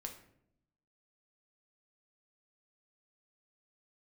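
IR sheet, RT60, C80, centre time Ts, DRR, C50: 0.70 s, 12.5 dB, 16 ms, 2.5 dB, 9.5 dB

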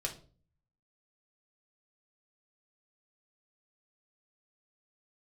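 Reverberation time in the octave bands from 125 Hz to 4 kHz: 0.90 s, 0.60 s, 0.45 s, 0.35 s, 0.30 s, 0.30 s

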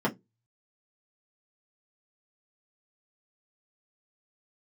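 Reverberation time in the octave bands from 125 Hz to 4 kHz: 0.35 s, 0.25 s, 0.20 s, 0.15 s, 0.10 s, 0.15 s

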